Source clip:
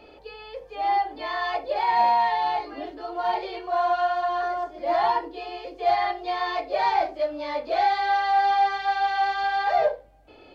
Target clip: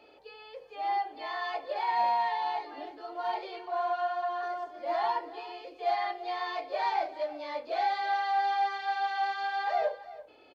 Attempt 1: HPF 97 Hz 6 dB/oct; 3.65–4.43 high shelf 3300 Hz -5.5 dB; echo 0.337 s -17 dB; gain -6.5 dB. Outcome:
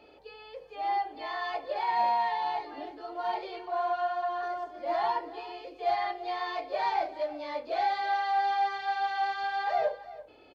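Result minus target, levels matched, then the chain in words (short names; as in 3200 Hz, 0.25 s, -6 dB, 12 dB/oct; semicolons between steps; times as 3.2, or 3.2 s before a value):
125 Hz band +6.5 dB
HPF 340 Hz 6 dB/oct; 3.65–4.43 high shelf 3300 Hz -5.5 dB; echo 0.337 s -17 dB; gain -6.5 dB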